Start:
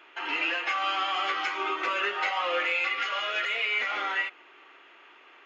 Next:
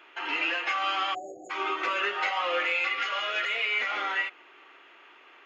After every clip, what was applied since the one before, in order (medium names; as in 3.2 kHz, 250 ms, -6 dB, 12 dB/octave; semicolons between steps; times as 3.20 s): spectral selection erased 1.14–1.50 s, 760–6600 Hz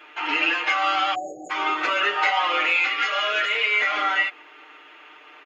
comb 6.6 ms, depth 92%; trim +4 dB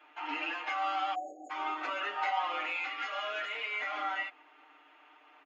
rippled Chebyshev high-pass 200 Hz, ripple 9 dB; trim -7 dB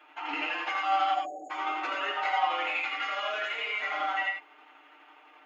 tremolo saw down 12 Hz, depth 40%; gated-style reverb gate 120 ms rising, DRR 2 dB; trim +4 dB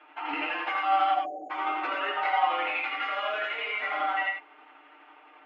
distance through air 250 m; trim +3.5 dB